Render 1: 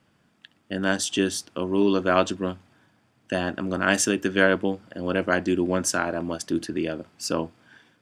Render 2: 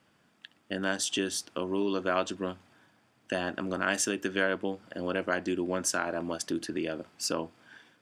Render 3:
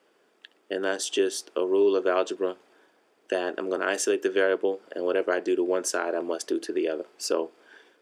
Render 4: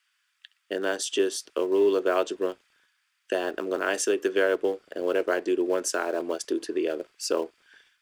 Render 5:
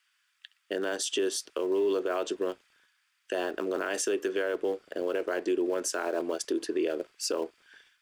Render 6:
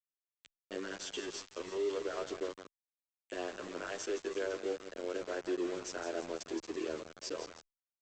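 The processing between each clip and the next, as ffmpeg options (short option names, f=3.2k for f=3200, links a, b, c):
-af "acompressor=threshold=-28dB:ratio=2,lowshelf=f=200:g=-8.5"
-af "highpass=f=410:t=q:w=4"
-filter_complex "[0:a]acrossover=split=1000|1200[a][b][c];[a]aeval=exprs='sgn(val(0))*max(abs(val(0))-0.0015,0)':c=same[d];[b]acrusher=bits=7:mix=0:aa=0.000001[e];[d][e][c]amix=inputs=3:normalize=0"
-af "alimiter=limit=-20.5dB:level=0:latency=1:release=34"
-filter_complex "[0:a]aecho=1:1:167|334|501|668|835|1002:0.316|0.171|0.0922|0.0498|0.0269|0.0145,aresample=16000,aeval=exprs='val(0)*gte(abs(val(0)),0.0237)':c=same,aresample=44100,asplit=2[a][b];[b]adelay=10.2,afreqshift=-0.44[c];[a][c]amix=inputs=2:normalize=1,volume=-6dB"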